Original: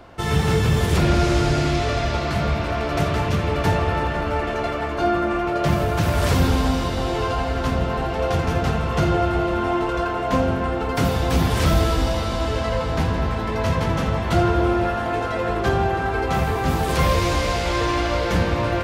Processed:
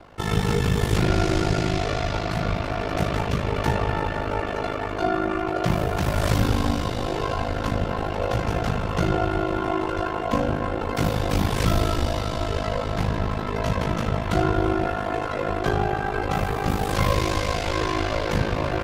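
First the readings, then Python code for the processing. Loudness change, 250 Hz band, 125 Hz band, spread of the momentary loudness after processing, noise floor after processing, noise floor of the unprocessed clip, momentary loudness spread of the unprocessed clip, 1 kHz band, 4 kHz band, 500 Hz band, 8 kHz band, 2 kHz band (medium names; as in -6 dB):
-3.0 dB, -3.0 dB, -3.0 dB, 5 LU, -28 dBFS, -25 dBFS, 5 LU, -3.0 dB, -3.0 dB, -3.0 dB, -3.0 dB, -3.0 dB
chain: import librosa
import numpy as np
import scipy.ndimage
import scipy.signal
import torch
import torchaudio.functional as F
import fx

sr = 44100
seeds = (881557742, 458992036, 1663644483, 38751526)

y = x * np.sin(2.0 * np.pi * 26.0 * np.arange(len(x)) / sr)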